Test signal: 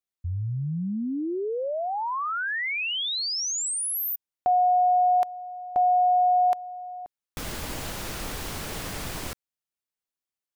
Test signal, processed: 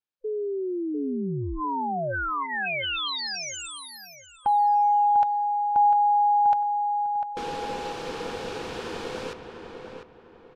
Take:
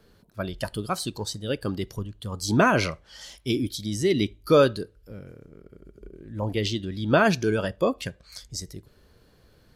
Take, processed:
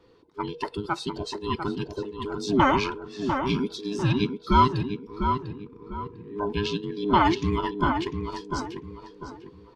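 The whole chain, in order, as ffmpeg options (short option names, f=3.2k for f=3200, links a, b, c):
-filter_complex "[0:a]afftfilt=real='real(if(between(b,1,1008),(2*floor((b-1)/24)+1)*24-b,b),0)':imag='imag(if(between(b,1,1008),(2*floor((b-1)/24)+1)*24-b,b),0)*if(between(b,1,1008),-1,1)':win_size=2048:overlap=0.75,lowpass=4.3k,lowshelf=f=78:g=-5.5,bandreject=f=2k:w=10,asplit=2[a][b];[b]adelay=698,lowpass=f=2.1k:p=1,volume=-6dB,asplit=2[c][d];[d]adelay=698,lowpass=f=2.1k:p=1,volume=0.34,asplit=2[e][f];[f]adelay=698,lowpass=f=2.1k:p=1,volume=0.34,asplit=2[g][h];[h]adelay=698,lowpass=f=2.1k:p=1,volume=0.34[i];[a][c][e][g][i]amix=inputs=5:normalize=0"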